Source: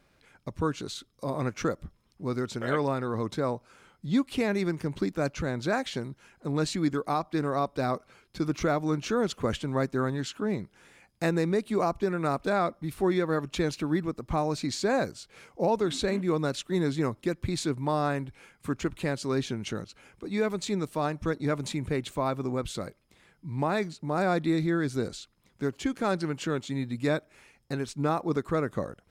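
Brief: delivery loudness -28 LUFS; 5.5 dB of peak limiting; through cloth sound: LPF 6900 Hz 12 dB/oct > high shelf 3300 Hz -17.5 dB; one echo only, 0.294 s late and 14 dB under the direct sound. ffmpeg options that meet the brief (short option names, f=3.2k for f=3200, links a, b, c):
-af "alimiter=limit=-21.5dB:level=0:latency=1,lowpass=6.9k,highshelf=f=3.3k:g=-17.5,aecho=1:1:294:0.2,volume=5dB"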